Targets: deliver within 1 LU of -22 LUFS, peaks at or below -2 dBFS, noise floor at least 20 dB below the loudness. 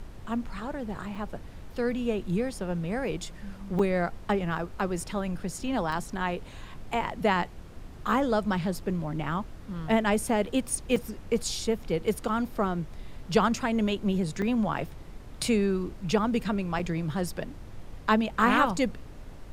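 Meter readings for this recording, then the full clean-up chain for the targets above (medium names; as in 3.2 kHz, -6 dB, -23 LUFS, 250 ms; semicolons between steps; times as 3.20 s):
dropouts 6; longest dropout 4.5 ms; noise floor -45 dBFS; noise floor target -49 dBFS; loudness -29.0 LUFS; peak level -7.5 dBFS; loudness target -22.0 LUFS
-> interpolate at 1.15/3.79/5.92/10.96/14.42/16.79 s, 4.5 ms; noise print and reduce 6 dB; trim +7 dB; peak limiter -2 dBFS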